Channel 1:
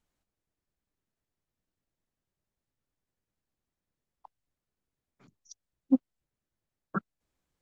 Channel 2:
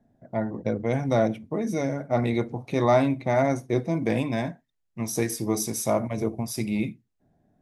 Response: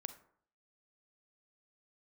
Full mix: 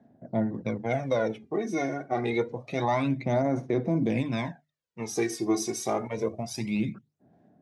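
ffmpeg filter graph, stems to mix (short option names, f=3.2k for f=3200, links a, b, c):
-filter_complex "[0:a]volume=-13.5dB[a];[1:a]bandreject=f=50:t=h:w=6,bandreject=f=100:t=h:w=6,bandreject=f=150:t=h:w=6,volume=-2dB,asplit=2[b][c];[c]apad=whole_len=335887[d];[a][d]sidechaincompress=threshold=-30dB:ratio=8:attack=5.7:release=887[e];[e][b]amix=inputs=2:normalize=0,aphaser=in_gain=1:out_gain=1:delay=2.8:decay=0.65:speed=0.27:type=sinusoidal,highpass=130,lowpass=6.3k,alimiter=limit=-16.5dB:level=0:latency=1:release=123"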